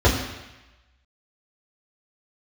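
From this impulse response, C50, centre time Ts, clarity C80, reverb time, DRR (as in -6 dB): 5.5 dB, 40 ms, 7.0 dB, 1.0 s, -7.5 dB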